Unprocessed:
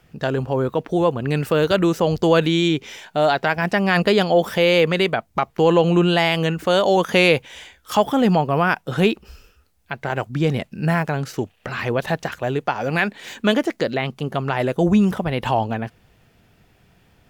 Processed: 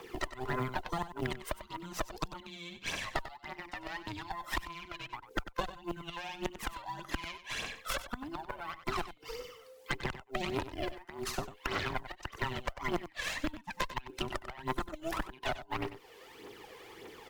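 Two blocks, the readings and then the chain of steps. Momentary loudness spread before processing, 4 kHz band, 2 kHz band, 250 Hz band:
9 LU, -15.5 dB, -15.5 dB, -22.0 dB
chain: every band turned upside down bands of 500 Hz; high-pass 510 Hz 6 dB/octave; treble shelf 7.1 kHz -4.5 dB; inverted gate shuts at -13 dBFS, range -27 dB; compression 4:1, threshold -37 dBFS, peak gain reduction 14.5 dB; Chebyshev shaper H 6 -11 dB, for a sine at -18 dBFS; phaser 1.7 Hz, delay 2 ms, feedback 60%; on a send: delay 95 ms -13 dB; on the sum: short-mantissa float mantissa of 4-bit; three bands compressed up and down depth 40%

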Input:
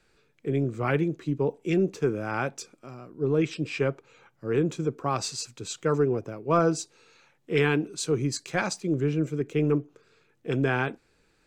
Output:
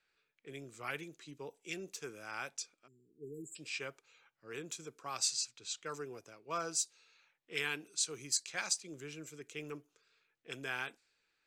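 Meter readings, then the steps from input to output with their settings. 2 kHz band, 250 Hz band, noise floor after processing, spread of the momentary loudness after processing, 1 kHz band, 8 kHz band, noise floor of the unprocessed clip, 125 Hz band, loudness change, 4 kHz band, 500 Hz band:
-9.0 dB, -23.0 dB, -82 dBFS, 15 LU, -13.5 dB, +0.5 dB, -67 dBFS, -26.0 dB, -12.0 dB, -2.0 dB, -20.0 dB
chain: level-controlled noise filter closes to 2.6 kHz, open at -23 dBFS; spectral selection erased 2.87–3.56 s, 470–6800 Hz; pre-emphasis filter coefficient 0.97; trim +3 dB

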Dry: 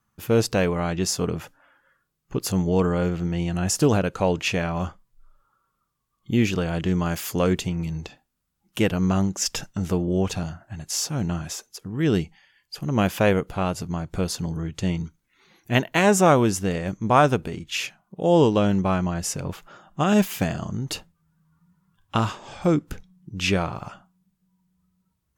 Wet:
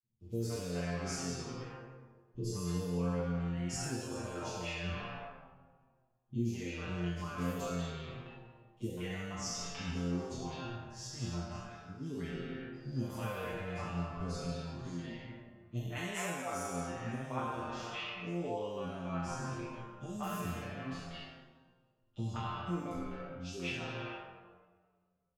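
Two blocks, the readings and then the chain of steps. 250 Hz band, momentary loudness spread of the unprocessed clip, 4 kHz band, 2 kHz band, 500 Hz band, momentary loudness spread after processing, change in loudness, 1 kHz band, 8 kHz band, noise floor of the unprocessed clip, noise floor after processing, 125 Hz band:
-15.5 dB, 14 LU, -14.0 dB, -13.5 dB, -17.5 dB, 10 LU, -15.5 dB, -15.0 dB, -15.0 dB, -75 dBFS, -73 dBFS, -13.5 dB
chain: spectral sustain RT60 1.75 s; level-controlled noise filter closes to 810 Hz, open at -14 dBFS; compression 6:1, threshold -21 dBFS, peak gain reduction 12.5 dB; chord resonator F2 sus4, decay 0.4 s; three bands offset in time highs, lows, mids 30/200 ms, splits 510/4100 Hz; endless flanger 6.1 ms -0.45 Hz; trim +4.5 dB

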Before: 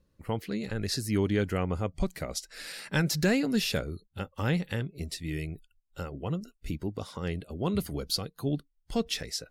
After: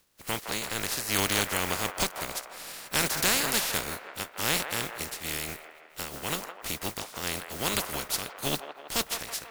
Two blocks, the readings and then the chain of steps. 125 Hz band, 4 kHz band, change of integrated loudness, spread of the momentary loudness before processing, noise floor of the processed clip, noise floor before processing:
-9.0 dB, +5.5 dB, +2.5 dB, 13 LU, -52 dBFS, -72 dBFS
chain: spectral contrast reduction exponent 0.23; on a send: feedback echo behind a band-pass 163 ms, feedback 58%, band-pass 1 kHz, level -6 dB

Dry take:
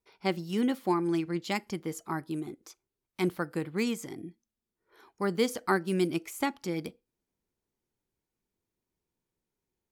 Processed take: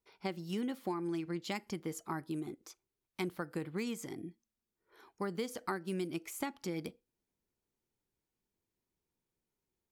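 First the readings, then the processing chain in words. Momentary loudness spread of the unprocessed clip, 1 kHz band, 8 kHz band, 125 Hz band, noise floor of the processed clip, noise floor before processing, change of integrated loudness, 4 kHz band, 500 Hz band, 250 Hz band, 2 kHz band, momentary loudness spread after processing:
14 LU, -8.5 dB, -5.0 dB, -7.0 dB, under -85 dBFS, under -85 dBFS, -8.0 dB, -7.5 dB, -8.5 dB, -8.0 dB, -8.5 dB, 8 LU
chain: compression 6:1, threshold -31 dBFS, peak gain reduction 10 dB; trim -2.5 dB

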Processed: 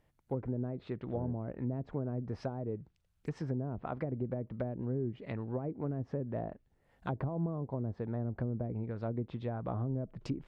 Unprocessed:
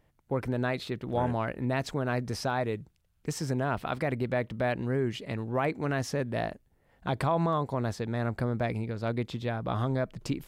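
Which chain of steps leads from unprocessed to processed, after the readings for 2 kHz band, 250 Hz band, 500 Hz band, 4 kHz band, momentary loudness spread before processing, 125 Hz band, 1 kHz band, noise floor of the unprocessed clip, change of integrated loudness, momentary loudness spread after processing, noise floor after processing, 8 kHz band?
-18.0 dB, -5.0 dB, -8.0 dB, under -15 dB, 5 LU, -4.5 dB, -13.0 dB, -69 dBFS, -6.5 dB, 5 LU, -73 dBFS, under -20 dB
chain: low-pass that closes with the level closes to 390 Hz, closed at -25 dBFS; trim -4.5 dB

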